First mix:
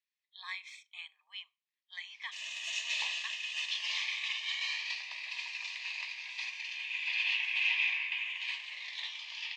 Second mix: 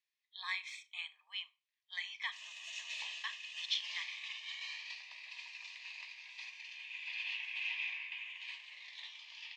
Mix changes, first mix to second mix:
speech: send +9.0 dB
background −9.0 dB

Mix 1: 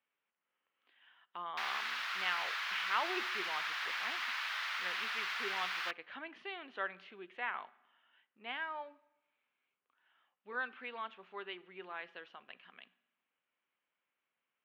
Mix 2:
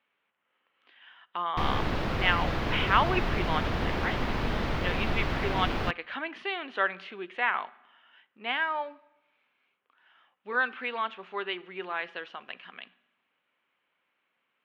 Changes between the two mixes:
speech +11.5 dB
background: remove high-pass filter 1,300 Hz 24 dB per octave

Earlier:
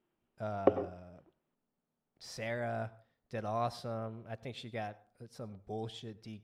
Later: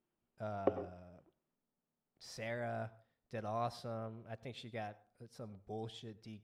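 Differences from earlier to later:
speech −4.0 dB
background −7.0 dB

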